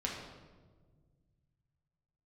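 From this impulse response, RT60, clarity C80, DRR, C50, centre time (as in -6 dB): 1.5 s, 4.5 dB, -2.5 dB, 2.5 dB, 58 ms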